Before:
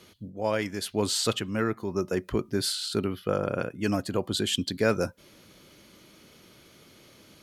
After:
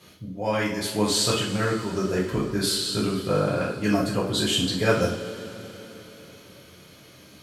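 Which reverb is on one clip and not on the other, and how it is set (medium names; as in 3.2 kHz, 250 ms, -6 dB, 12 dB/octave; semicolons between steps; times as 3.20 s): two-slope reverb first 0.47 s, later 4.2 s, from -19 dB, DRR -6.5 dB; trim -2.5 dB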